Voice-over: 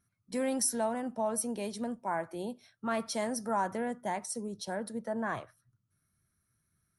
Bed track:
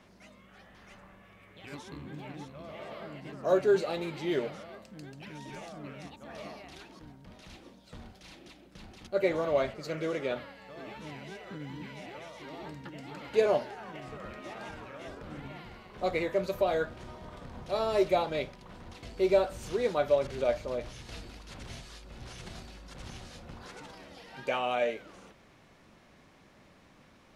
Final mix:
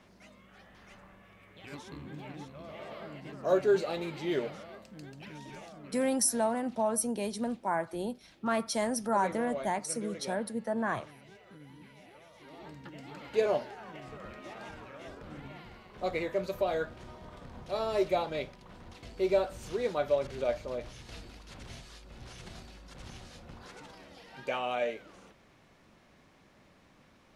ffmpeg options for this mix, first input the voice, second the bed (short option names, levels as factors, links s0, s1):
-filter_complex "[0:a]adelay=5600,volume=1.33[s0];[1:a]volume=2.24,afade=t=out:st=5.28:d=0.91:silence=0.334965,afade=t=in:st=12.29:d=0.63:silence=0.398107[s1];[s0][s1]amix=inputs=2:normalize=0"